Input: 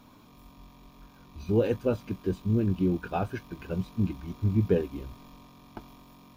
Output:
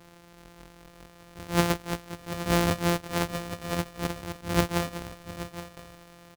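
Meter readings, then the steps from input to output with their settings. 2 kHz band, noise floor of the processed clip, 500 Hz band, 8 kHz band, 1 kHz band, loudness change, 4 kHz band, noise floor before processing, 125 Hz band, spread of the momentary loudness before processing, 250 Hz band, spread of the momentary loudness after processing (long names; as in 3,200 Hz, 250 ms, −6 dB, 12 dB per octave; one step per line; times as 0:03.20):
+11.0 dB, −53 dBFS, −2.0 dB, can't be measured, +7.5 dB, −0.5 dB, +15.5 dB, −55 dBFS, −2.0 dB, 20 LU, −1.5 dB, 17 LU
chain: samples sorted by size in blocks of 256 samples
low-shelf EQ 210 Hz −6.5 dB
single-tap delay 826 ms −13.5 dB
level that may rise only so fast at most 200 dB per second
level +4 dB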